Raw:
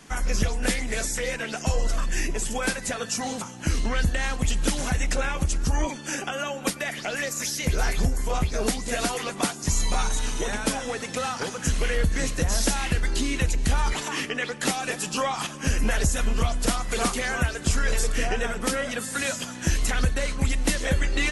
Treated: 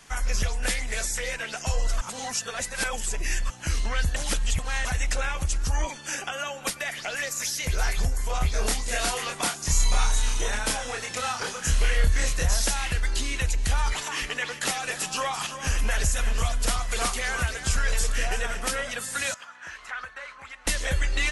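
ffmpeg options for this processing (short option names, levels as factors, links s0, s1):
-filter_complex "[0:a]asettb=1/sr,asplit=3[s0][s1][s2];[s0]atrim=end=8.384[s3];[s1]atrim=start=8.38:end=12.54,asetpts=PTS-STARTPTS,afade=t=in:d=0.004:c=qsin,afade=t=out:st=4.156:d=0.004:c=qsin,asplit=2[s4][s5];[s5]adelay=28,volume=0.708[s6];[s4][s6]amix=inputs=2:normalize=0,atrim=end_sample=183456[s7];[s2]atrim=start=12.536[s8];[s3][s7]acrossfade=d=0.004:c1=hsin:c2=qsin[s9];[s9][s8]acrossfade=d=0.004:c1=qsin:c2=hsin,asettb=1/sr,asplit=3[s10][s11][s12];[s10]atrim=end=13.884[s13];[s11]atrim=start=13.88:end=18.83,asetpts=PTS-STARTPTS,afade=t=in:d=0.004:c=qsin,afade=t=out:st=4.946:d=0.004:c=qsin,aecho=1:1:340:0.299,atrim=end_sample=218295[s14];[s12]atrim=start=18.826[s15];[s13][s14]acrossfade=d=0.004:c1=hsin:c2=qsin[s16];[s16][s15]acrossfade=d=0.004:c1=qsin:c2=hsin,asettb=1/sr,asplit=3[s17][s18][s19];[s17]atrim=end=19.344[s20];[s18]atrim=start=19.34:end=20.67,asetpts=PTS-STARTPTS,afade=t=in:d=0.004:c=qsin,afade=t=out:st=1.326:d=0.004:c=qsin,bandpass=f=1300:t=q:w=1.9[s21];[s19]atrim=start=20.666[s22];[s20][s21]acrossfade=d=0.004:c1=hsin:c2=qsin[s23];[s23][s22]acrossfade=d=0.004:c1=qsin:c2=hsin,asplit=5[s24][s25][s26][s27][s28];[s24]atrim=end=2.012[s29];[s25]atrim=start=2.008:end=3.502,asetpts=PTS-STARTPTS,areverse[s30];[s26]atrim=start=3.498:end=4.162[s31];[s27]atrim=start=4.158:end=4.852,asetpts=PTS-STARTPTS,areverse[s32];[s28]atrim=start=4.848[s33];[s29][s30]acrossfade=d=0.004:c1=hsin:c2=hsin[s34];[s34][s31]acrossfade=d=0.004:c1=hsin:c2=hsin[s35];[s35][s32]acrossfade=d=0.004:c1=hsin:c2=hsin[s36];[s36][s33]acrossfade=d=0.004:c1=hsin:c2=hsin,equalizer=f=250:t=o:w=1.9:g=-11.5"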